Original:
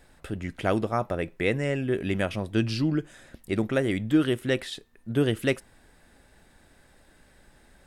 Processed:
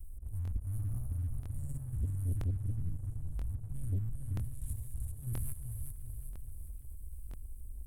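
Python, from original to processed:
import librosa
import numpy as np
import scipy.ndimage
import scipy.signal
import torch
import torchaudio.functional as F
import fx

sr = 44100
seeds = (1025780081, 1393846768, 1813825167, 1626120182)

y = fx.spec_steps(x, sr, hold_ms=200)
y = fx.auto_swell(y, sr, attack_ms=240.0)
y = scipy.signal.sosfilt(scipy.signal.cheby2(4, 50, [180.0, 5100.0], 'bandstop', fs=sr, output='sos'), y)
y = fx.tilt_shelf(y, sr, db=3.0, hz=1200.0)
y = fx.level_steps(y, sr, step_db=9)
y = fx.echo_feedback(y, sr, ms=385, feedback_pct=44, wet_db=-6.5)
y = fx.leveller(y, sr, passes=2)
y = fx.high_shelf(y, sr, hz=6400.0, db=-8.5, at=(2.41, 4.67))
y = fx.buffer_crackle(y, sr, first_s=0.43, period_s=0.98, block=1024, kind='repeat')
y = F.gain(torch.from_numpy(y), 12.5).numpy()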